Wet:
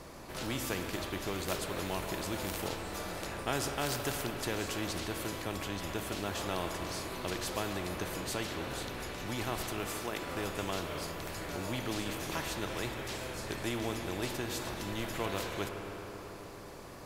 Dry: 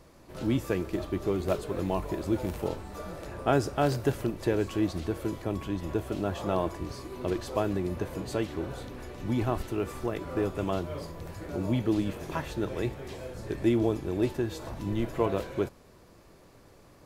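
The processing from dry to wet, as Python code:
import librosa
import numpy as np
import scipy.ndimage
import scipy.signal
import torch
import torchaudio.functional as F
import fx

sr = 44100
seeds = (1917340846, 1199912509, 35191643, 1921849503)

y = fx.highpass(x, sr, hz=230.0, slope=12, at=(9.87, 10.29))
y = fx.rev_spring(y, sr, rt60_s=3.0, pass_ms=(50, 54), chirp_ms=45, drr_db=9.0)
y = fx.spectral_comp(y, sr, ratio=2.0)
y = y * 10.0 ** (-7.0 / 20.0)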